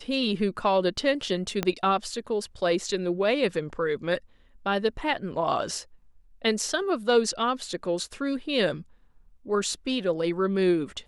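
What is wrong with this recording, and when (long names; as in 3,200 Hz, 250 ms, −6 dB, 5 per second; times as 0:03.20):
0:01.63: click −11 dBFS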